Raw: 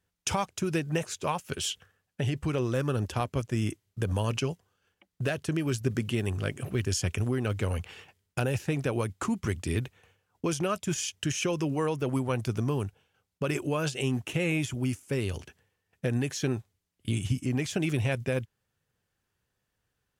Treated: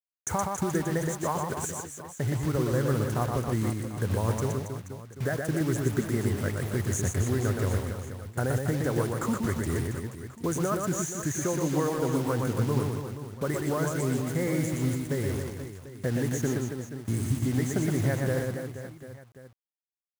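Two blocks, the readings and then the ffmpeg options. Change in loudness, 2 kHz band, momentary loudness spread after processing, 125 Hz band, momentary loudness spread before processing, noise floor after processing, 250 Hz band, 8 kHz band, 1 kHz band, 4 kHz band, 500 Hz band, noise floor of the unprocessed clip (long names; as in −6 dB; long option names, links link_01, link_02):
+1.5 dB, −0.5 dB, 9 LU, +2.5 dB, 6 LU, −56 dBFS, +2.0 dB, +2.5 dB, +2.5 dB, −6.5 dB, +2.0 dB, −81 dBFS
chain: -af "asuperstop=centerf=3600:order=20:qfactor=0.95,acrusher=bits=6:mix=0:aa=0.000001,aecho=1:1:120|276|478.8|742.4|1085:0.631|0.398|0.251|0.158|0.1"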